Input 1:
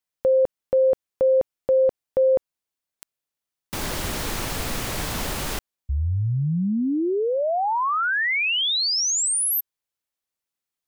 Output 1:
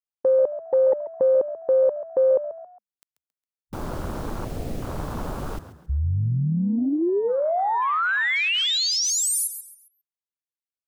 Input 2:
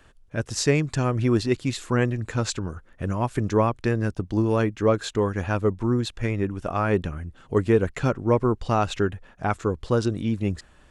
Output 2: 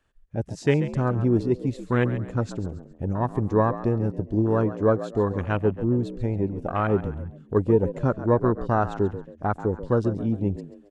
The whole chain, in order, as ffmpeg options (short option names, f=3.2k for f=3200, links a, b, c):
-filter_complex "[0:a]afwtdn=0.0398,asplit=4[a][b][c][d];[b]adelay=136,afreqshift=66,volume=-13.5dB[e];[c]adelay=272,afreqshift=132,volume=-22.6dB[f];[d]adelay=408,afreqshift=198,volume=-31.7dB[g];[a][e][f][g]amix=inputs=4:normalize=0"